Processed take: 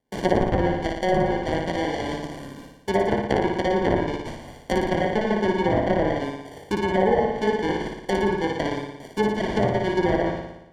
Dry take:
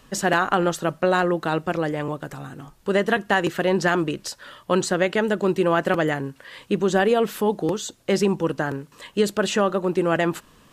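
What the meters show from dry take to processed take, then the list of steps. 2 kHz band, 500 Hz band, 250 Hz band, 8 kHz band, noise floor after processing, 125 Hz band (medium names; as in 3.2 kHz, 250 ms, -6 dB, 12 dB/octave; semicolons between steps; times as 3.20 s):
-4.5 dB, -1.0 dB, -0.5 dB, under -10 dB, -46 dBFS, +0.5 dB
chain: rattle on loud lows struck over -30 dBFS, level -23 dBFS; high-pass 180 Hz 24 dB/octave; sample-and-hold 34×; gate -46 dBFS, range -21 dB; low-pass that closes with the level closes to 1.3 kHz, closed at -15 dBFS; flutter echo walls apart 9.9 m, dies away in 0.89 s; trim -2.5 dB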